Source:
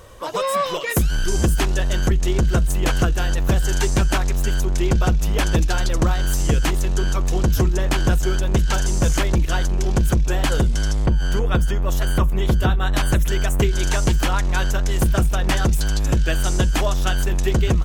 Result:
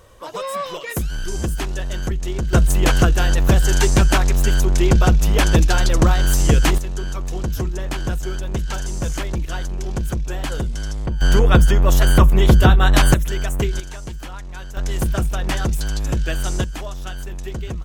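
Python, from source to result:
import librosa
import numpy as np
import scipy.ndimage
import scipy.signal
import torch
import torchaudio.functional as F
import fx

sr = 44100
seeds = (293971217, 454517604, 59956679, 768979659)

y = fx.gain(x, sr, db=fx.steps((0.0, -5.0), (2.53, 4.0), (6.78, -5.5), (11.21, 6.5), (13.14, -2.5), (13.8, -13.5), (14.77, -2.5), (16.64, -10.0)))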